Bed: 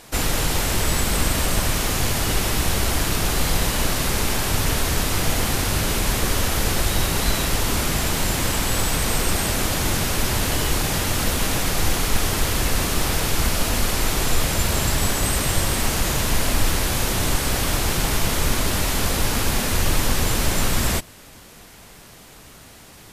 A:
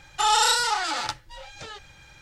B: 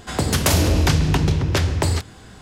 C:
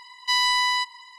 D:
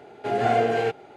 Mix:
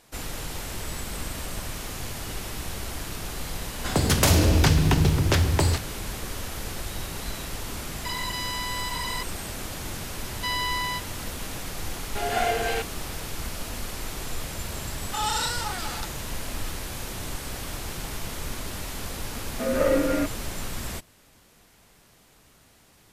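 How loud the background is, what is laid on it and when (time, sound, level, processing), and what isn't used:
bed −12.5 dB
0:03.77: mix in B −2 dB + log-companded quantiser 8 bits
0:08.05: mix in C −12 dB + envelope flattener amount 100%
0:10.15: mix in C −6 dB + low-pass filter 4,100 Hz
0:11.91: mix in D −2 dB + spectral tilt +4 dB per octave
0:14.94: mix in A −7.5 dB
0:19.35: mix in D −0.5 dB + single-sideband voice off tune −170 Hz 370–2,800 Hz

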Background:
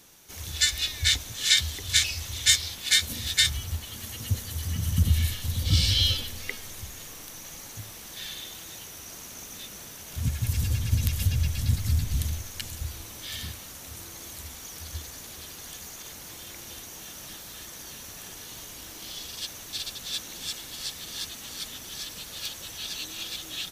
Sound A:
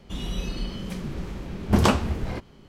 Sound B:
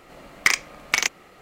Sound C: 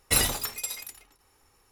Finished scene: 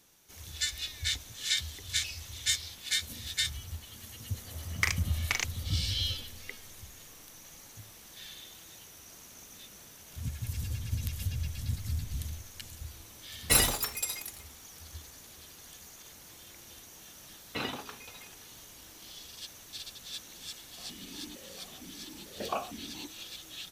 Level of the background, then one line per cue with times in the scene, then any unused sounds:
background −9 dB
0:04.37: mix in B −10 dB
0:13.39: mix in C −0.5 dB
0:17.44: mix in C −5 dB + loudspeaker in its box 170–3,400 Hz, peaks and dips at 260 Hz +5 dB, 590 Hz −4 dB, 2,000 Hz −6 dB
0:20.67: mix in A −2 dB + formant filter that steps through the vowels 4.4 Hz

